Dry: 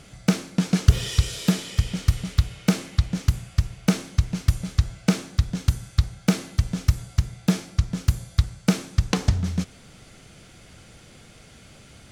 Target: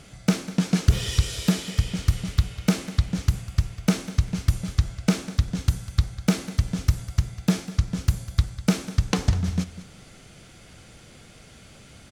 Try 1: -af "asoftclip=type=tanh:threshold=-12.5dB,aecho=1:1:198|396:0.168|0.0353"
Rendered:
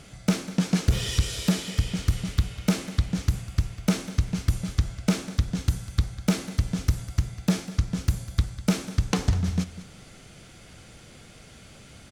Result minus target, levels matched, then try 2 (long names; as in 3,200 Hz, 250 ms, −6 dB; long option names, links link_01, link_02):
soft clipping: distortion +8 dB
-af "asoftclip=type=tanh:threshold=-6dB,aecho=1:1:198|396:0.168|0.0353"